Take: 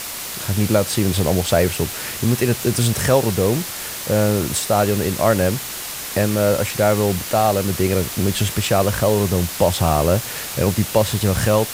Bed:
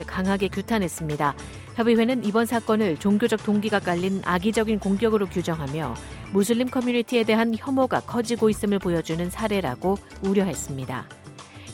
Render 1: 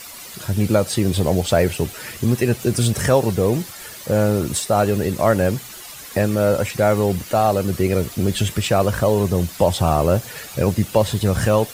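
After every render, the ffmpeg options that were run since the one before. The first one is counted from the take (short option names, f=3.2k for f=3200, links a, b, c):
-af "afftdn=nr=11:nf=-30"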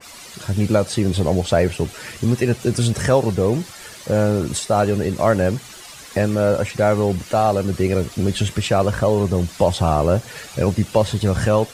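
-af "lowpass=9k,adynamicequalizer=threshold=0.0282:dfrequency=2100:dqfactor=0.7:tfrequency=2100:tqfactor=0.7:attack=5:release=100:ratio=0.375:range=1.5:mode=cutabove:tftype=highshelf"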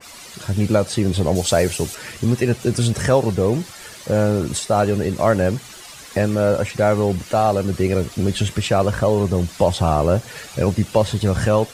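-filter_complex "[0:a]asettb=1/sr,asplit=3[a][b][c];[a]atrim=end=1.354[d];[b]atrim=start=1.35:end=1.95,asetpts=PTS-STARTPTS,afade=t=in:d=0.004:c=qsin,afade=t=out:st=0.596:d=0.004:c=qsin,bass=f=250:g=-2,treble=f=4k:g=11[e];[c]atrim=start=1.946[f];[d][e]acrossfade=d=0.004:c1=hsin:c2=qsin[g];[g][f]acrossfade=d=0.004:c1=qsin:c2=hsin"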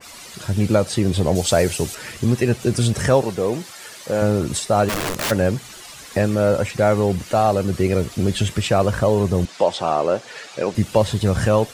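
-filter_complex "[0:a]asettb=1/sr,asplit=3[a][b][c];[a]atrim=end=3.224[d];[b]atrim=start=3.22:end=4.22,asetpts=PTS-STARTPTS,afade=t=in:d=0.004:c=qsin,afade=t=out:st=0.996:d=0.004:c=qsin,highpass=f=340:p=1[e];[c]atrim=start=4.216[f];[d][e]acrossfade=d=0.004:c1=hsin:c2=qsin[g];[g][f]acrossfade=d=0.004:c1=qsin:c2=hsin,asplit=3[h][i][j];[h]afade=t=out:st=4.88:d=0.02[k];[i]aeval=exprs='(mod(7.5*val(0)+1,2)-1)/7.5':c=same,afade=t=in:st=4.88:d=0.02,afade=t=out:st=5.3:d=0.02[l];[j]afade=t=in:st=5.3:d=0.02[m];[k][l][m]amix=inputs=3:normalize=0,asettb=1/sr,asplit=3[n][o][p];[n]atrim=end=9.454[q];[o]atrim=start=9.45:end=10.75,asetpts=PTS-STARTPTS,afade=t=in:d=0.004:c=qsin,afade=t=out:st=1.296:d=0.004:c=qsin,highpass=330,lowpass=6.3k[r];[p]atrim=start=10.746[s];[q][r]acrossfade=d=0.004:c1=hsin:c2=qsin[t];[t][s]acrossfade=d=0.004:c1=qsin:c2=hsin"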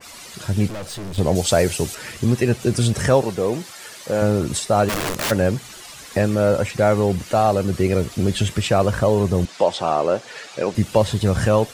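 -filter_complex "[0:a]asettb=1/sr,asplit=3[a][b][c];[a]atrim=end=0.684[d];[b]atrim=start=0.68:end=1.18,asetpts=PTS-STARTPTS,afade=t=in:d=0.004:c=qsin,afade=t=out:st=0.496:d=0.004:c=qsin,aeval=exprs='(tanh(28.2*val(0)+0.35)-tanh(0.35))/28.2':c=same[e];[c]atrim=start=1.176[f];[d][e]acrossfade=d=0.004:c1=hsin:c2=qsin[g];[g][f]acrossfade=d=0.004:c1=qsin:c2=hsin"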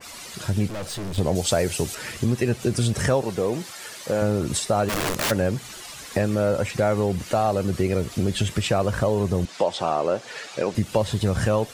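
-af "acompressor=threshold=-21dB:ratio=2"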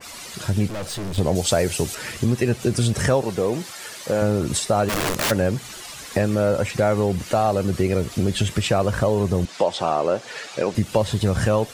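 -af "volume=2dB"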